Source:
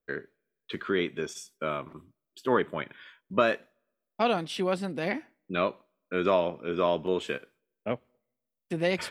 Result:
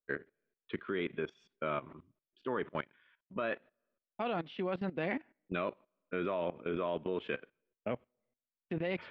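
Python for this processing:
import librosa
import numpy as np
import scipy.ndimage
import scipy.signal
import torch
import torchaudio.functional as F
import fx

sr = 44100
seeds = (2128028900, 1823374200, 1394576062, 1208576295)

y = fx.law_mismatch(x, sr, coded='A', at=(2.69, 3.34))
y = scipy.signal.sosfilt(scipy.signal.butter(4, 3200.0, 'lowpass', fs=sr, output='sos'), y)
y = fx.level_steps(y, sr, step_db=17)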